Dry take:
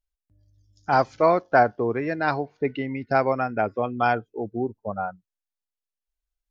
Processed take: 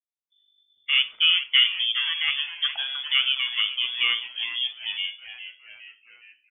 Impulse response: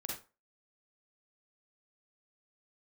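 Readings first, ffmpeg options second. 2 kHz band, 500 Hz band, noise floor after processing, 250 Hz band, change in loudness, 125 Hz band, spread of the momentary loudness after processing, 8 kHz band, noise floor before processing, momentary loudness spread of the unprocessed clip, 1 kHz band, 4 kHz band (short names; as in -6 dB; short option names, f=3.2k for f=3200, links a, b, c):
+3.5 dB, under -35 dB, -79 dBFS, under -35 dB, +2.0 dB, under -35 dB, 14 LU, n/a, under -85 dBFS, 11 LU, -21.0 dB, +28.0 dB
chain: -filter_complex "[0:a]lowpass=f=3.1k:t=q:w=0.5098,lowpass=f=3.1k:t=q:w=0.6013,lowpass=f=3.1k:t=q:w=0.9,lowpass=f=3.1k:t=q:w=2.563,afreqshift=-3600,agate=range=-33dB:threshold=-57dB:ratio=3:detection=peak,bandreject=f=55.42:t=h:w=4,bandreject=f=110.84:t=h:w=4,bandreject=f=166.26:t=h:w=4,bandreject=f=221.68:t=h:w=4,bandreject=f=277.1:t=h:w=4,bandreject=f=332.52:t=h:w=4,bandreject=f=387.94:t=h:w=4,bandreject=f=443.36:t=h:w=4,bandreject=f=498.78:t=h:w=4,bandreject=f=554.2:t=h:w=4,bandreject=f=609.62:t=h:w=4,bandreject=f=665.04:t=h:w=4,bandreject=f=720.46:t=h:w=4,bandreject=f=775.88:t=h:w=4,bandreject=f=831.3:t=h:w=4,bandreject=f=886.72:t=h:w=4,bandreject=f=942.14:t=h:w=4,bandreject=f=997.56:t=h:w=4,bandreject=f=1.05298k:t=h:w=4,bandreject=f=1.1084k:t=h:w=4,asplit=7[a][b][c][d][e][f][g];[b]adelay=413,afreqshift=-140,volume=-12dB[h];[c]adelay=826,afreqshift=-280,volume=-17.5dB[i];[d]adelay=1239,afreqshift=-420,volume=-23dB[j];[e]adelay=1652,afreqshift=-560,volume=-28.5dB[k];[f]adelay=2065,afreqshift=-700,volume=-34.1dB[l];[g]adelay=2478,afreqshift=-840,volume=-39.6dB[m];[a][h][i][j][k][l][m]amix=inputs=7:normalize=0,asplit=2[n][o];[1:a]atrim=start_sample=2205[p];[o][p]afir=irnorm=-1:irlink=0,volume=-10.5dB[q];[n][q]amix=inputs=2:normalize=0,volume=-3dB"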